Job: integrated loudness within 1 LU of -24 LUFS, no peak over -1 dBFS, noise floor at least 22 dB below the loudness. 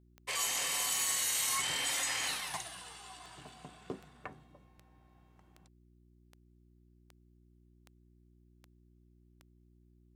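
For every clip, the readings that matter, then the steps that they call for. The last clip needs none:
clicks 13; hum 60 Hz; harmonics up to 360 Hz; hum level -62 dBFS; loudness -32.0 LUFS; peak -21.0 dBFS; loudness target -24.0 LUFS
-> de-click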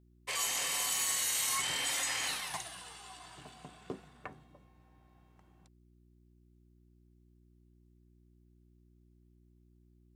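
clicks 0; hum 60 Hz; harmonics up to 360 Hz; hum level -62 dBFS
-> de-hum 60 Hz, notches 6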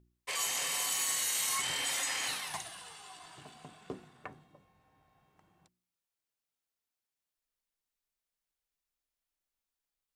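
hum none; loudness -31.5 LUFS; peak -21.0 dBFS; loudness target -24.0 LUFS
-> gain +7.5 dB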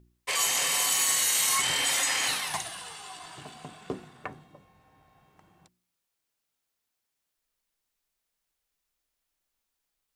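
loudness -24.5 LUFS; peak -13.5 dBFS; noise floor -83 dBFS

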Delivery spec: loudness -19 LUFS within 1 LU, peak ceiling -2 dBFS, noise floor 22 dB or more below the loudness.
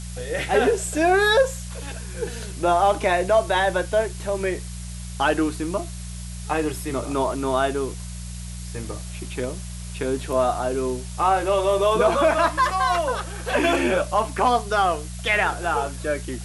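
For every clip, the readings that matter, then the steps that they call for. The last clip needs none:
hum 60 Hz; harmonics up to 180 Hz; hum level -32 dBFS; noise floor -34 dBFS; noise floor target -45 dBFS; loudness -22.5 LUFS; peak -7.5 dBFS; loudness target -19.0 LUFS
-> de-hum 60 Hz, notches 3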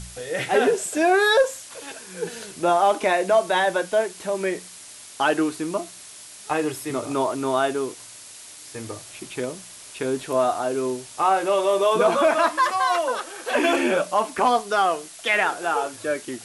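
hum none; noise floor -43 dBFS; noise floor target -45 dBFS
-> denoiser 6 dB, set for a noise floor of -43 dBFS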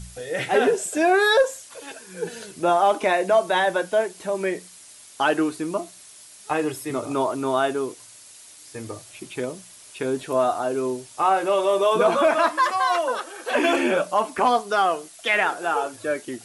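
noise floor -47 dBFS; loudness -22.5 LUFS; peak -8.0 dBFS; loudness target -19.0 LUFS
-> gain +3.5 dB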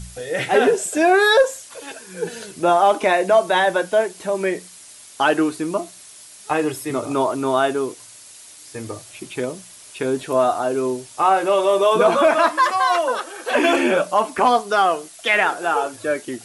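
loudness -19.0 LUFS; peak -4.5 dBFS; noise floor -43 dBFS

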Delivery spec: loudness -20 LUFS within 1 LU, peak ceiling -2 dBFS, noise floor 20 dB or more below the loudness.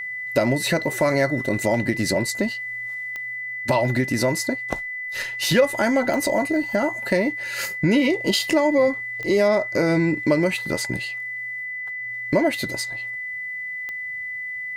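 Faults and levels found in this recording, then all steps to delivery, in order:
clicks 4; steady tone 2000 Hz; tone level -28 dBFS; loudness -22.5 LUFS; peak -6.0 dBFS; loudness target -20.0 LUFS
-> de-click; notch 2000 Hz, Q 30; gain +2.5 dB

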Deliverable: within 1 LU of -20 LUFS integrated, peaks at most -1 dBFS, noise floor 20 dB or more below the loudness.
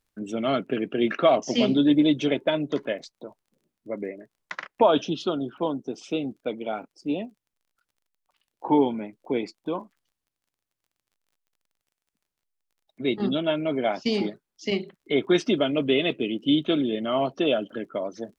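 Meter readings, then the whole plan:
ticks 21/s; loudness -25.5 LUFS; peak -7.5 dBFS; loudness target -20.0 LUFS
-> de-click; gain +5.5 dB

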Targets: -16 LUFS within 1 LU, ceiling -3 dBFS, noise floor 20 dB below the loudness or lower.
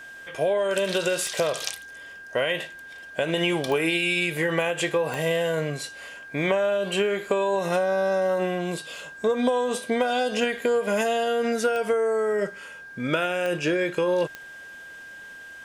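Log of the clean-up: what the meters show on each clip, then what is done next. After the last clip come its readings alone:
clicks 6; steady tone 1600 Hz; tone level -40 dBFS; loudness -25.0 LUFS; peak -9.5 dBFS; loudness target -16.0 LUFS
-> de-click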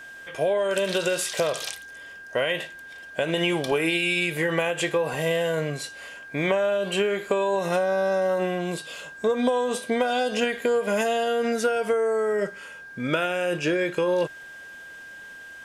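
clicks 0; steady tone 1600 Hz; tone level -40 dBFS
-> notch 1600 Hz, Q 30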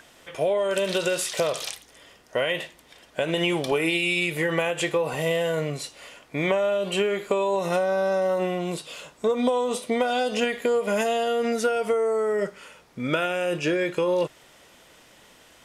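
steady tone none; loudness -25.0 LUFS; peak -9.5 dBFS; loudness target -16.0 LUFS
-> gain +9 dB; limiter -3 dBFS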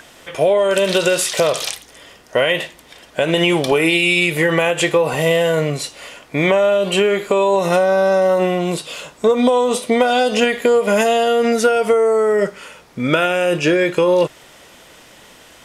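loudness -16.0 LUFS; peak -3.0 dBFS; noise floor -45 dBFS

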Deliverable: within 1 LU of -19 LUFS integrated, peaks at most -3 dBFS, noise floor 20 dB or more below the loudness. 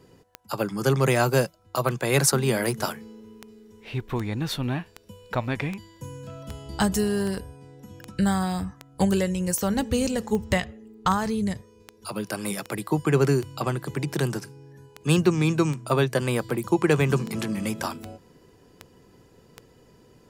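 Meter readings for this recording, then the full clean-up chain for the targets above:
clicks 26; loudness -25.5 LUFS; peak -6.0 dBFS; loudness target -19.0 LUFS
-> de-click; gain +6.5 dB; limiter -3 dBFS

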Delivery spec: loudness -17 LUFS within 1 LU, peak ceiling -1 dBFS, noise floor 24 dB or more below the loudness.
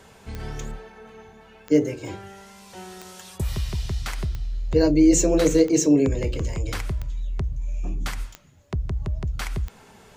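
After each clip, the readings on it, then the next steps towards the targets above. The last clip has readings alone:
clicks 8; loudness -23.5 LUFS; peak -5.5 dBFS; loudness target -17.0 LUFS
-> de-click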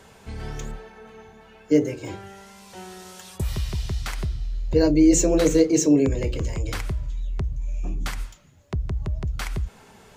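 clicks 0; loudness -23.5 LUFS; peak -5.5 dBFS; loudness target -17.0 LUFS
-> gain +6.5 dB; limiter -1 dBFS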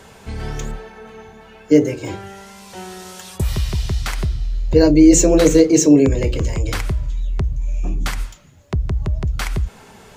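loudness -17.5 LUFS; peak -1.0 dBFS; noise floor -44 dBFS

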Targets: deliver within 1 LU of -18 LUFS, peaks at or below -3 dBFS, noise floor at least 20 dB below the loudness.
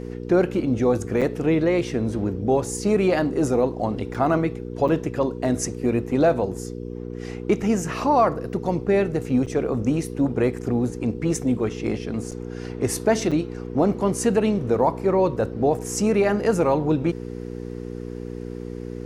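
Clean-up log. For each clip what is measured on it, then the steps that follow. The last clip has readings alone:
dropouts 6; longest dropout 6.6 ms; hum 60 Hz; harmonics up to 480 Hz; hum level -30 dBFS; loudness -22.5 LUFS; peak -8.0 dBFS; loudness target -18.0 LUFS
-> interpolate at 1.21/4.14/4.88/9.46/12.31/13.31, 6.6 ms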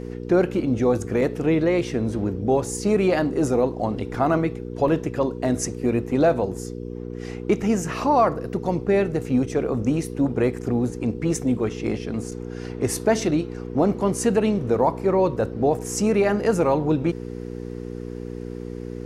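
dropouts 0; hum 60 Hz; harmonics up to 480 Hz; hum level -30 dBFS
-> de-hum 60 Hz, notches 8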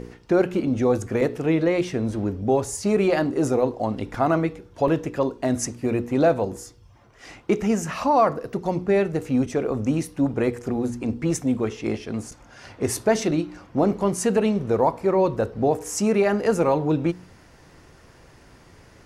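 hum none; loudness -23.5 LUFS; peak -7.5 dBFS; loudness target -18.0 LUFS
-> gain +5.5 dB; limiter -3 dBFS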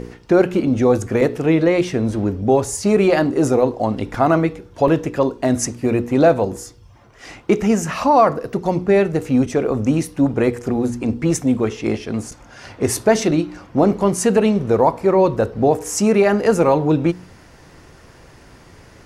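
loudness -18.0 LUFS; peak -3.0 dBFS; noise floor -46 dBFS

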